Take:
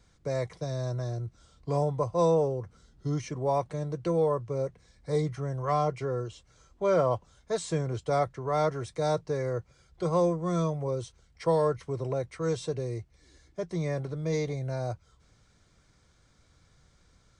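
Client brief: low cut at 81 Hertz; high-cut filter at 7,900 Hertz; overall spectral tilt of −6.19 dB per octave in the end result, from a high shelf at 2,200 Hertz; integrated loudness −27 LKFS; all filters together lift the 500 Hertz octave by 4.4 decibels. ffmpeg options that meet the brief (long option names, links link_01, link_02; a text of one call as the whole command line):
ffmpeg -i in.wav -af "highpass=81,lowpass=7900,equalizer=frequency=500:width_type=o:gain=4.5,highshelf=frequency=2200:gain=7.5" out.wav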